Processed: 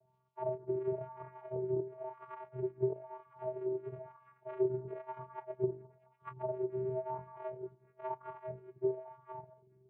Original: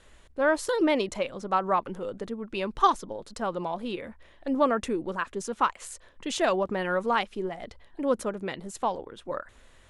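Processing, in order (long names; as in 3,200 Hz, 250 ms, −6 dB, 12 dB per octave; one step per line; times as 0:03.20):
frequency axis turned over on the octave scale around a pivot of 580 Hz
treble cut that deepens with the level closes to 690 Hz, closed at −25 dBFS
mains-hum notches 50/100/150/200/250/300/350/400/450 Hz
downward compressor 10 to 1, threshold −25 dBFS, peak gain reduction 8.5 dB
channel vocoder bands 4, square 128 Hz
on a send: echo through a band-pass that steps 213 ms, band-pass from 1,100 Hz, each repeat 0.7 octaves, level −9 dB
on the sum: LFO wah 1 Hz 340–1,100 Hz, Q 5.1
level +8.5 dB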